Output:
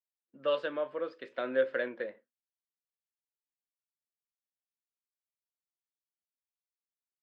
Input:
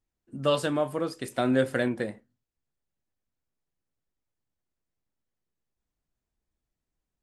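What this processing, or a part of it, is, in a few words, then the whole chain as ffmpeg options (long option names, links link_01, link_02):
phone earpiece: -af "highpass=440,equalizer=frequency=530:width_type=q:width=4:gain=8,equalizer=frequency=770:width_type=q:width=4:gain=-9,equalizer=frequency=1600:width_type=q:width=4:gain=4,lowpass=frequency=3500:width=0.5412,lowpass=frequency=3500:width=1.3066,agate=range=-33dB:threshold=-48dB:ratio=3:detection=peak,volume=-6.5dB"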